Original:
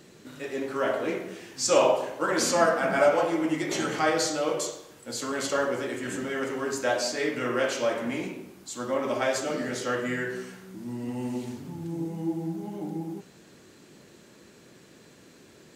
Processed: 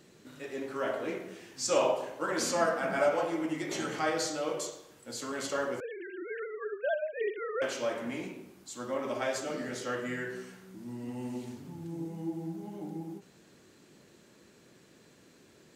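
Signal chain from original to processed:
0:05.80–0:07.62: three sine waves on the formant tracks
every ending faded ahead of time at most 270 dB per second
level −6 dB

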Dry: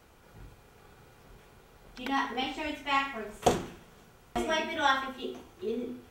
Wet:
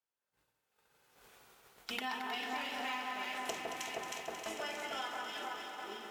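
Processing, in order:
source passing by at 0:01.46, 29 m/s, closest 14 metres
in parallel at −6 dB: dead-zone distortion −49.5 dBFS
on the sum: low-shelf EQ 230 Hz −10 dB
on a send: delay that swaps between a low-pass and a high-pass 157 ms, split 1,700 Hz, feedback 80%, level −5 dB
on the sum: downward expander −48 dBFS
spectral tilt +2 dB per octave
downward compressor 6 to 1, threshold −45 dBFS, peak gain reduction 17.5 dB
feedback echo at a low word length 224 ms, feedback 80%, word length 12 bits, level −8.5 dB
level +7 dB

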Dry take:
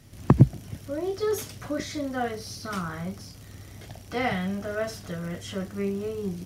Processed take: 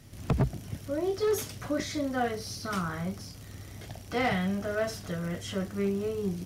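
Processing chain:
gain into a clipping stage and back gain 21 dB

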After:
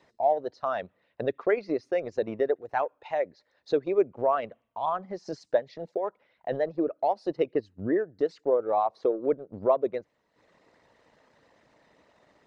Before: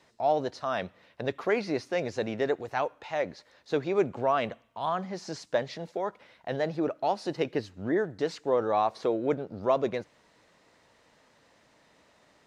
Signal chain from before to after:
spectral envelope exaggerated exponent 1.5
transient designer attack +4 dB, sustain −11 dB

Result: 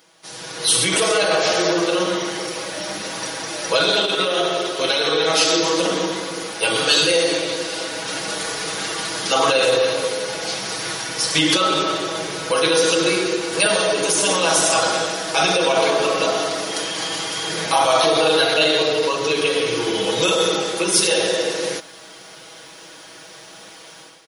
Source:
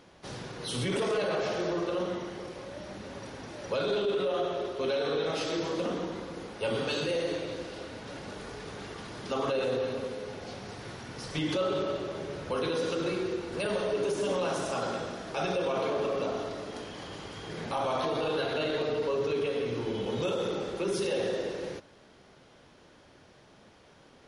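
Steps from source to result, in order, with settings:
RIAA equalisation recording
comb filter 6.2 ms, depth 79%
automatic gain control gain up to 15 dB
level −1.5 dB

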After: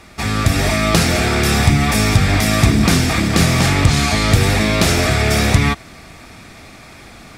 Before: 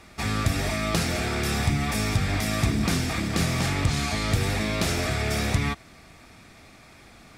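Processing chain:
automatic gain control gain up to 4 dB
level +7 dB

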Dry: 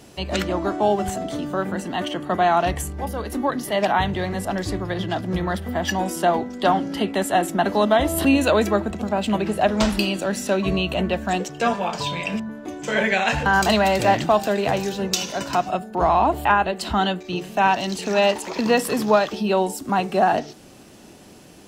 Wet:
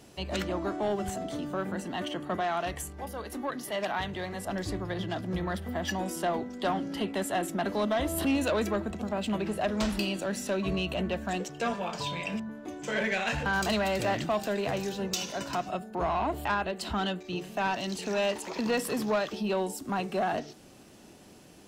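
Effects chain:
dynamic equaliser 830 Hz, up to −5 dB, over −30 dBFS, Q 3.1
soft clipping −14 dBFS, distortion −16 dB
0:02.40–0:04.47: low-shelf EQ 340 Hz −6.5 dB
level −7 dB

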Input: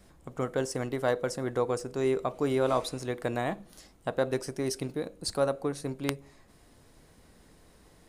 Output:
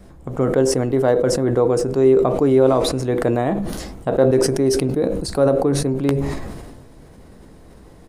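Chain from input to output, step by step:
dynamic equaliser 370 Hz, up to +4 dB, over −36 dBFS, Q 1
double-tracking delay 15 ms −13 dB
in parallel at −1 dB: downward compressor, threshold −38 dBFS, peak gain reduction 19 dB
on the sum: tilt shelving filter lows +5.5 dB, about 1,200 Hz
level that may fall only so fast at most 36 dB per second
level +3 dB

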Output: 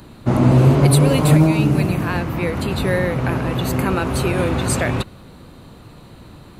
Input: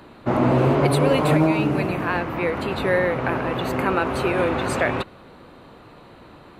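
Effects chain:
bass and treble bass +12 dB, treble +14 dB
level −1.5 dB

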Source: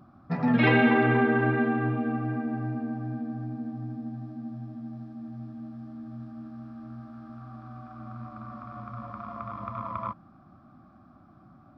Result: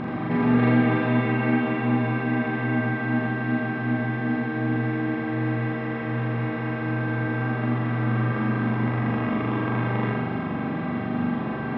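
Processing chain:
compressor on every frequency bin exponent 0.2
high-shelf EQ 2,400 Hz −11.5 dB
flutter between parallel walls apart 7.1 metres, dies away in 0.96 s
level −6.5 dB

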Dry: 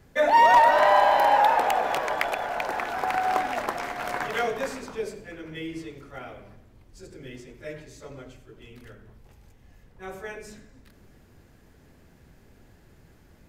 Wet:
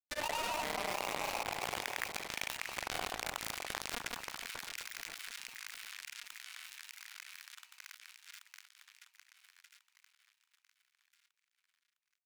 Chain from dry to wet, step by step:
dynamic equaliser 670 Hz, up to +5 dB, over −30 dBFS, Q 1.2
in parallel at −2 dB: brickwall limiter −15.5 dBFS, peak gain reduction 10 dB
on the sum: first-order pre-emphasis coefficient 0.97
treble cut that deepens with the level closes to 760 Hz, closed at −28 dBFS
bit reduction 5 bits
on a send: echo with a time of its own for lows and highs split 1,500 Hz, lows 276 ms, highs 789 ms, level −15 dB
on the sum: tempo change 1.1×
granular cloud, pitch spread up and down by 0 semitones
envelope flattener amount 70%
level −5.5 dB

